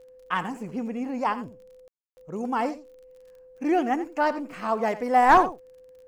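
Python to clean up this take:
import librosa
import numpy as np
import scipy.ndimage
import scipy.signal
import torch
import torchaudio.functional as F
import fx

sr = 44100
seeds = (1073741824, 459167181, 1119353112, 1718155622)

y = fx.fix_declick_ar(x, sr, threshold=6.5)
y = fx.notch(y, sr, hz=510.0, q=30.0)
y = fx.fix_ambience(y, sr, seeds[0], print_start_s=3.1, print_end_s=3.6, start_s=1.88, end_s=2.17)
y = fx.fix_echo_inverse(y, sr, delay_ms=87, level_db=-14.5)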